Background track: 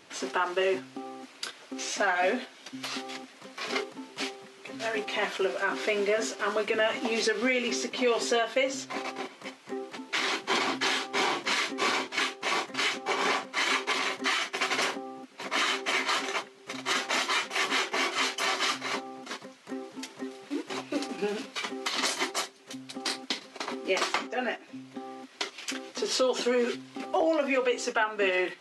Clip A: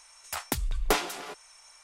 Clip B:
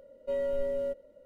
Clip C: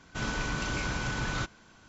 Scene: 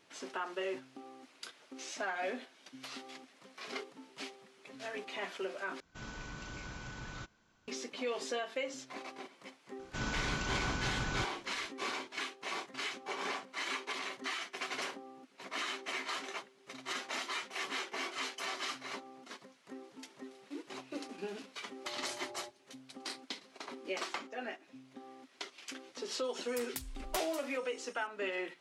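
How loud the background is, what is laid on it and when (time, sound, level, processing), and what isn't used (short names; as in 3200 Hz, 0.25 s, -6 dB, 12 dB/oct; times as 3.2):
background track -11 dB
5.8 replace with C -13.5 dB
9.79 add C -4.5 dB
21.56 add B -18 dB + vocoder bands 8, square 119 Hz
26.24 add A -2.5 dB + passive tone stack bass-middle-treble 5-5-5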